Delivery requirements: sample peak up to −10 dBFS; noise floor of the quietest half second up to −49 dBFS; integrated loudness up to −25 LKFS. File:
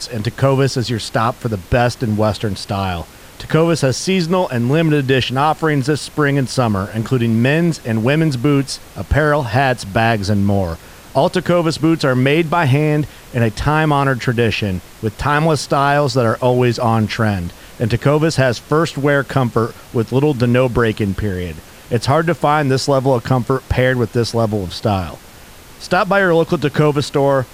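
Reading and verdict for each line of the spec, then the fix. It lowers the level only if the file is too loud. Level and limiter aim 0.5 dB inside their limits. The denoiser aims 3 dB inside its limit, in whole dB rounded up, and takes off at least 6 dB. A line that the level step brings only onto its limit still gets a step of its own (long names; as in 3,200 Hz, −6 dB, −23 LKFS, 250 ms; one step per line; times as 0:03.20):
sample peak −2.5 dBFS: out of spec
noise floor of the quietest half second −39 dBFS: out of spec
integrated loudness −16.5 LKFS: out of spec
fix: broadband denoise 6 dB, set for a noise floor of −39 dBFS
level −9 dB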